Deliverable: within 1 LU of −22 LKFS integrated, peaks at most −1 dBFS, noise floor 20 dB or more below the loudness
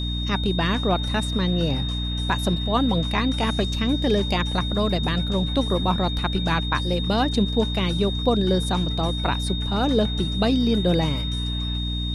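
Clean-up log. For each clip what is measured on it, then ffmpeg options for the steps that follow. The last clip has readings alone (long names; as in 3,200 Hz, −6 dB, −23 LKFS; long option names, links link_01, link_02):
mains hum 60 Hz; hum harmonics up to 300 Hz; level of the hum −24 dBFS; interfering tone 3,700 Hz; level of the tone −30 dBFS; integrated loudness −23.0 LKFS; sample peak −8.0 dBFS; target loudness −22.0 LKFS
→ -af "bandreject=frequency=60:width_type=h:width=6,bandreject=frequency=120:width_type=h:width=6,bandreject=frequency=180:width_type=h:width=6,bandreject=frequency=240:width_type=h:width=6,bandreject=frequency=300:width_type=h:width=6"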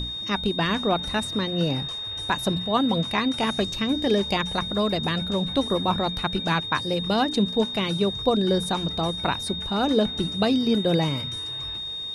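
mains hum none found; interfering tone 3,700 Hz; level of the tone −30 dBFS
→ -af "bandreject=frequency=3700:width=30"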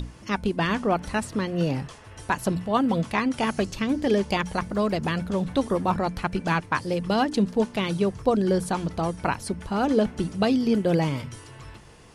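interfering tone none found; integrated loudness −25.5 LKFS; sample peak −9.0 dBFS; target loudness −22.0 LKFS
→ -af "volume=3.5dB"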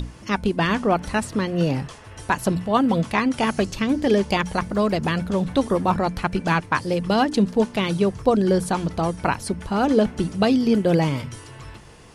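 integrated loudness −22.0 LKFS; sample peak −5.5 dBFS; background noise floor −43 dBFS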